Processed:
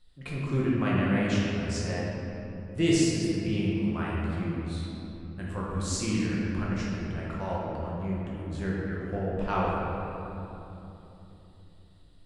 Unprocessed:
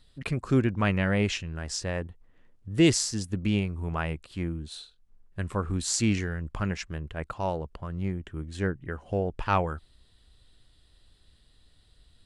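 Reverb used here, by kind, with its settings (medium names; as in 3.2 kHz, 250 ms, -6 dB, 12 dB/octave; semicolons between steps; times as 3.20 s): simulated room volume 170 m³, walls hard, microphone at 0.91 m; trim -8.5 dB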